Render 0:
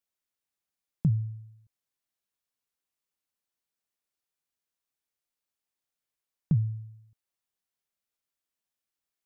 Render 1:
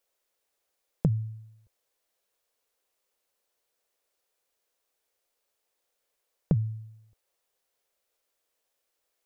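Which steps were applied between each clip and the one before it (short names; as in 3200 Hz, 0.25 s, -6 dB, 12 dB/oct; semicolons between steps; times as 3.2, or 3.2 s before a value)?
graphic EQ 125/250/500 Hz -11/-5/+11 dB; gain +8.5 dB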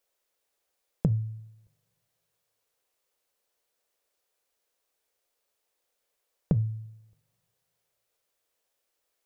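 two-slope reverb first 0.3 s, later 2.1 s, from -27 dB, DRR 16.5 dB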